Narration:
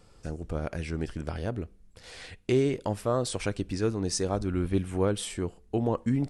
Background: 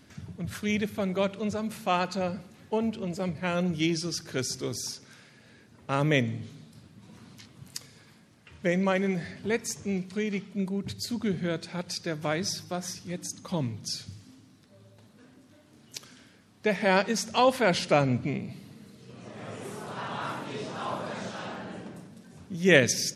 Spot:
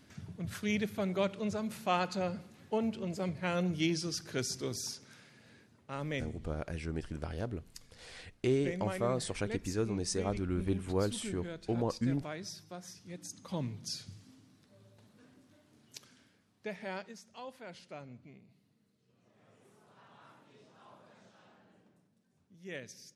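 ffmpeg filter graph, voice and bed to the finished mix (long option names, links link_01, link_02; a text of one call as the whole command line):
ffmpeg -i stem1.wav -i stem2.wav -filter_complex "[0:a]adelay=5950,volume=-5.5dB[link_01];[1:a]volume=2.5dB,afade=type=out:start_time=5.56:duration=0.28:silence=0.375837,afade=type=in:start_time=12.92:duration=0.79:silence=0.446684,afade=type=out:start_time=15.32:duration=1.91:silence=0.11885[link_02];[link_01][link_02]amix=inputs=2:normalize=0" out.wav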